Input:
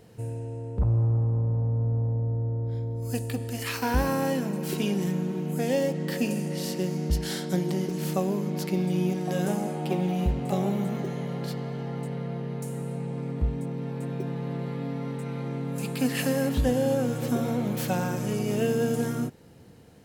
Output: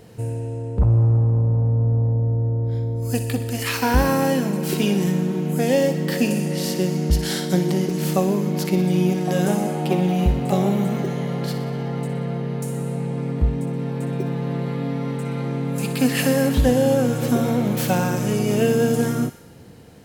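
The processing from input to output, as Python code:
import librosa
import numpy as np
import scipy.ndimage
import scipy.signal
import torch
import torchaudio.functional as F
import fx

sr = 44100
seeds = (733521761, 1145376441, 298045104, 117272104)

y = fx.echo_wet_highpass(x, sr, ms=61, feedback_pct=62, hz=1700.0, wet_db=-10.5)
y = y * 10.0 ** (7.0 / 20.0)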